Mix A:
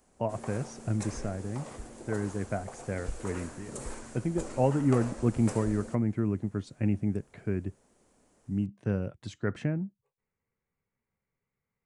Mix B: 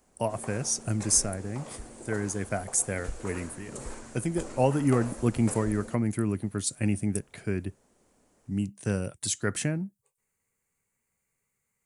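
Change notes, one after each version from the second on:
speech: remove head-to-tape spacing loss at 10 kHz 35 dB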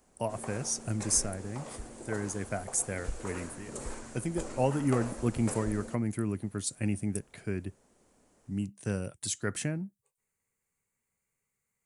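speech −4.0 dB

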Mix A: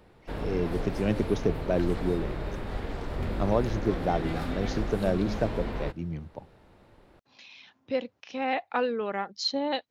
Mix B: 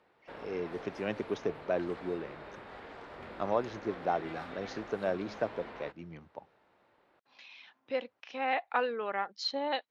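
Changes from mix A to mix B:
background −5.5 dB
master: add resonant band-pass 1,400 Hz, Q 0.56

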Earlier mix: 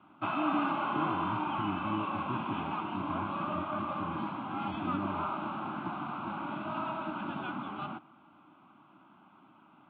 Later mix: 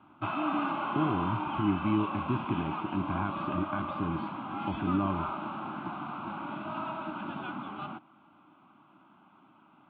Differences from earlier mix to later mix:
speech +9.0 dB
reverb: off

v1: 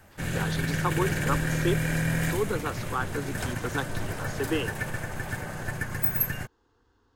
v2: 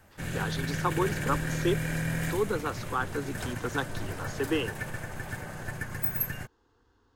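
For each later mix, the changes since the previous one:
background −4.0 dB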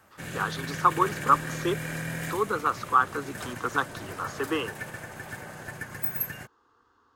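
speech: add parametric band 1,200 Hz +13.5 dB 0.51 octaves
master: add high-pass filter 200 Hz 6 dB per octave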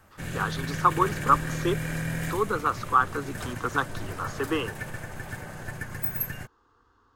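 master: remove high-pass filter 200 Hz 6 dB per octave

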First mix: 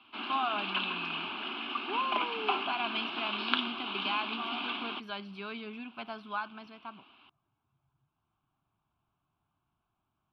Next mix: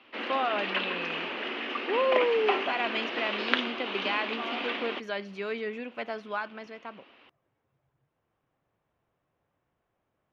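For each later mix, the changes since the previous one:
master: remove phaser with its sweep stopped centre 1,900 Hz, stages 6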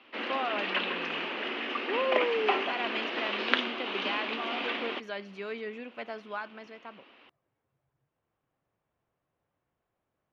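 speech −4.0 dB

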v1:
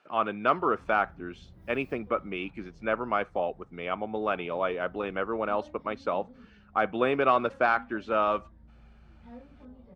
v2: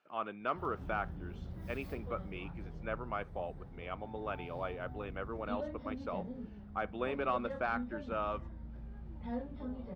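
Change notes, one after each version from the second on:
speech −11.0 dB
background +8.0 dB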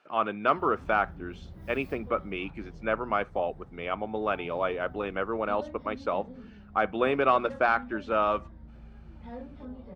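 speech +11.0 dB
master: add mains-hum notches 60/120/180/240 Hz

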